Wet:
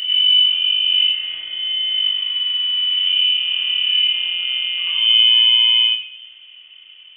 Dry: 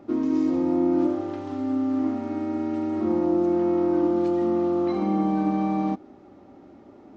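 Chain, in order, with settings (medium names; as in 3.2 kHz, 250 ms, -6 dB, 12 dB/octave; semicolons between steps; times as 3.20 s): reverse echo 96 ms -5 dB; simulated room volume 2000 m³, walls furnished, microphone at 2.5 m; frequency inversion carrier 3.3 kHz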